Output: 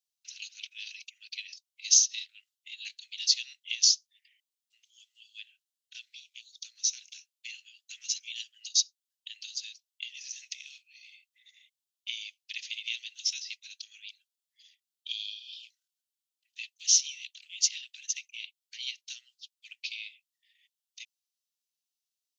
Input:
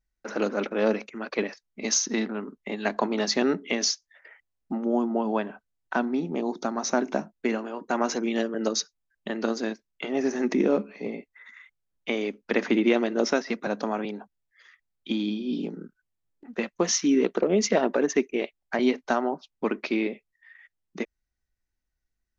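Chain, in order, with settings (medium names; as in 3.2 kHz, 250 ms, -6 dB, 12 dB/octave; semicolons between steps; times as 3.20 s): steep high-pass 2.8 kHz 48 dB/octave; trim +4 dB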